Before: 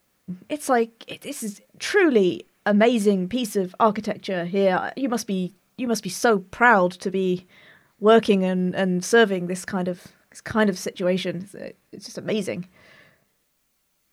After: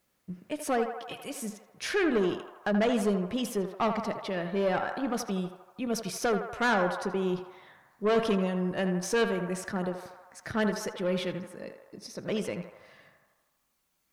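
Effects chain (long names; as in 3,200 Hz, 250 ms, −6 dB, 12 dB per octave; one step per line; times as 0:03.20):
tube saturation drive 15 dB, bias 0.3
on a send: feedback echo with a band-pass in the loop 80 ms, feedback 76%, band-pass 1,000 Hz, level −6 dB
on the sum: level −5.5 dB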